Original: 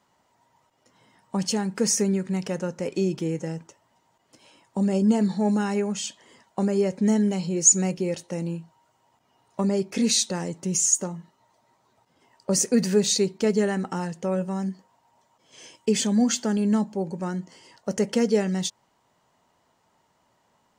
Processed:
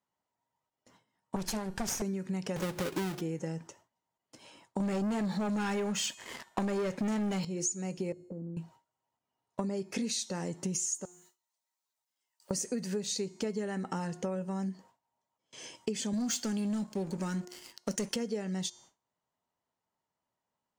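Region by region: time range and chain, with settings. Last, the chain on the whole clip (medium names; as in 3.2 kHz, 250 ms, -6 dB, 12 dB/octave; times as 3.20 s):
1.36–2.02 s: comb filter that takes the minimum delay 1.2 ms + loudspeaker Doppler distortion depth 0.35 ms
2.56–3.21 s: square wave that keeps the level + upward compressor, threshold -24 dBFS + comb of notches 230 Hz
4.80–7.45 s: peaking EQ 1.7 kHz +7.5 dB 1.9 oct + waveshaping leveller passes 3
8.12–8.57 s: inverse Chebyshev low-pass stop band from 1.3 kHz, stop band 50 dB + compression 5:1, threshold -38 dBFS
11.05–12.51 s: companding laws mixed up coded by mu + pre-emphasis filter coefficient 0.97 + compression 2:1, threshold -60 dBFS
16.13–18.16 s: high-pass 200 Hz + peaking EQ 630 Hz -11 dB 2.6 oct + waveshaping leveller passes 3
whole clip: de-hum 358.7 Hz, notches 38; gate with hold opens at -46 dBFS; compression 10:1, threshold -31 dBFS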